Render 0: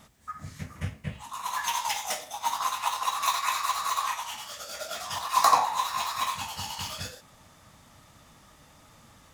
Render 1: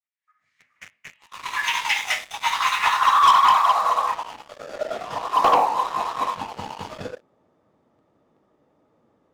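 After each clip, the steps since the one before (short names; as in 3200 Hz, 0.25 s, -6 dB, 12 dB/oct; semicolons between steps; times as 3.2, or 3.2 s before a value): opening faded in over 3.09 s; band-pass sweep 2200 Hz -> 400 Hz, 2.72–4.21; sample leveller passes 3; gain +9 dB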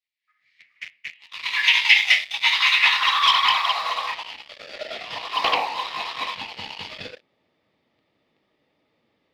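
band shelf 3100 Hz +16 dB; gain -7 dB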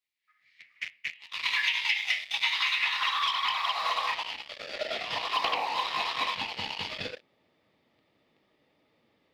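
compressor 16:1, threshold -24 dBFS, peak gain reduction 15.5 dB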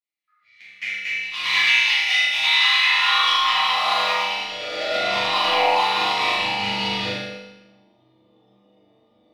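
spectral noise reduction 13 dB; flutter echo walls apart 6.9 m, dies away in 0.79 s; reverb RT60 1.1 s, pre-delay 7 ms, DRR -7.5 dB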